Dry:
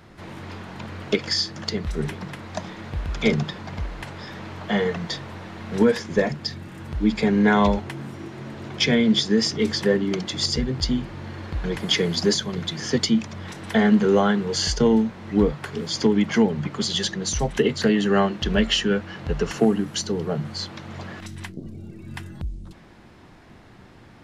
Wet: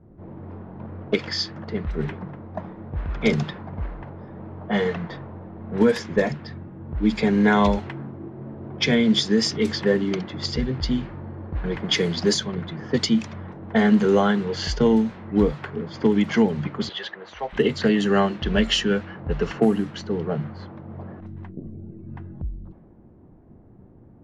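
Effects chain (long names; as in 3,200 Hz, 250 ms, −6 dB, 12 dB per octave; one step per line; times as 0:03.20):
low-pass that shuts in the quiet parts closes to 420 Hz, open at −16 dBFS
0:16.89–0:17.53: three-way crossover with the lows and the highs turned down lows −24 dB, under 460 Hz, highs −18 dB, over 3,800 Hz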